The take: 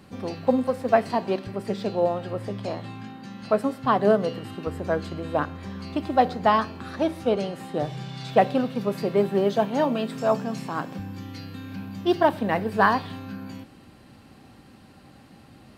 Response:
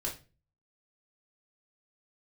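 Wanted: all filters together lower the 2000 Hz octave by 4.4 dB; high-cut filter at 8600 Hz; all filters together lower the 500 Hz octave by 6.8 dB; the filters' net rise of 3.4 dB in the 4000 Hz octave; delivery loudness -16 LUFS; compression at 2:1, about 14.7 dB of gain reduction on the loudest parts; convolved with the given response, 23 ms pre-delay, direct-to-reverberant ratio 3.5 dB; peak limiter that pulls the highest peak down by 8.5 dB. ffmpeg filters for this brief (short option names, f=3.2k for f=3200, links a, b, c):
-filter_complex "[0:a]lowpass=8.6k,equalizer=f=500:t=o:g=-9,equalizer=f=2k:t=o:g=-6.5,equalizer=f=4k:t=o:g=7,acompressor=threshold=-46dB:ratio=2,alimiter=level_in=7.5dB:limit=-24dB:level=0:latency=1,volume=-7.5dB,asplit=2[a][b];[1:a]atrim=start_sample=2205,adelay=23[c];[b][c]afir=irnorm=-1:irlink=0,volume=-6dB[d];[a][d]amix=inputs=2:normalize=0,volume=25.5dB"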